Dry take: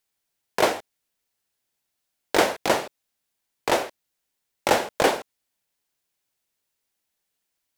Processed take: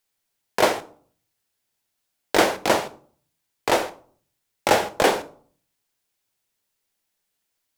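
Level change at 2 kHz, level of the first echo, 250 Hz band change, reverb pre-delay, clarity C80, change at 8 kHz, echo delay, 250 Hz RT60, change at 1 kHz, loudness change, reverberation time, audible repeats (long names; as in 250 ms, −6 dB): +2.0 dB, no echo audible, +2.0 dB, 8 ms, 21.0 dB, +2.0 dB, no echo audible, 0.55 s, +2.0 dB, +2.0 dB, 0.50 s, no echo audible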